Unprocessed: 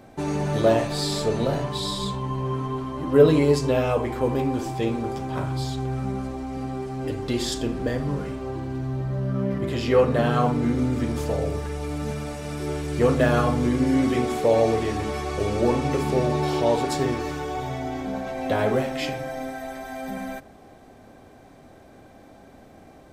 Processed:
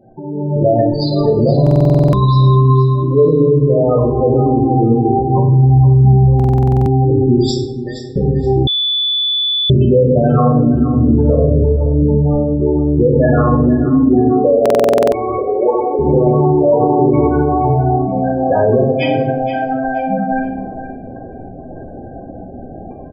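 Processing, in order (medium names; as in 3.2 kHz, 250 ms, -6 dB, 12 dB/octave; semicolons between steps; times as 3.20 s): spectral gate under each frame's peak -10 dB strong; 7.37–8.16 s: differentiator; level rider gain up to 15 dB; 14.86–15.99 s: high-pass 410 Hz 24 dB/octave; simulated room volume 190 m³, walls mixed, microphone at 0.93 m; peak limiter -4 dBFS, peak gain reduction 8 dB; 5.68–6.13 s: resonant high shelf 5.9 kHz -13.5 dB, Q 3; feedback delay 473 ms, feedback 22%, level -12 dB; 8.67–9.70 s: bleep 3.47 kHz -13 dBFS; buffer glitch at 1.62/6.35/14.61 s, samples 2048, times 10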